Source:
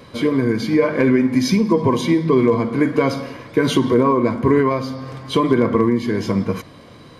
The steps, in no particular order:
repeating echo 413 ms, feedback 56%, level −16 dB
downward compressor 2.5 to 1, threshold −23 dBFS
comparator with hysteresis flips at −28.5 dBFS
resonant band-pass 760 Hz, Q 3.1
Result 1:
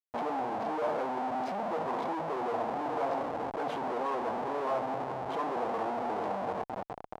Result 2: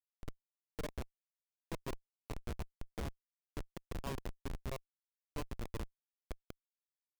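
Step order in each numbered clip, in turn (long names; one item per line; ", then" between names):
repeating echo, then comparator with hysteresis, then downward compressor, then resonant band-pass
repeating echo, then downward compressor, then resonant band-pass, then comparator with hysteresis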